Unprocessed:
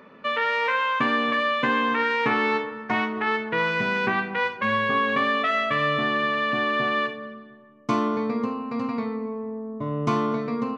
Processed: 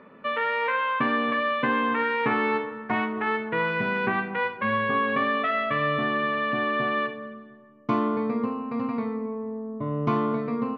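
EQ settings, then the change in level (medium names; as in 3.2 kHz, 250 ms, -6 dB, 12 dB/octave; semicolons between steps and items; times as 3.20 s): distance through air 300 m; 0.0 dB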